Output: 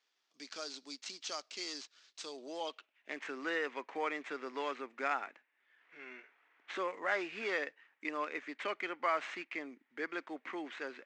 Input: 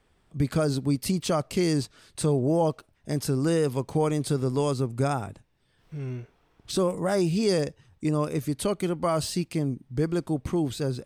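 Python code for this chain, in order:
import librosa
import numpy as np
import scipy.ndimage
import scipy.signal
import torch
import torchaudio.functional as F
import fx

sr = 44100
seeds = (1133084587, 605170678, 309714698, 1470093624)

y = scipy.signal.medfilt(x, 9)
y = scipy.signal.sosfilt(scipy.signal.ellip(3, 1.0, 40, [260.0, 7100.0], 'bandpass', fs=sr, output='sos'), y)
y = fx.filter_sweep_bandpass(y, sr, from_hz=5000.0, to_hz=2000.0, start_s=2.18, end_s=3.28, q=2.7)
y = y * librosa.db_to_amplitude(8.0)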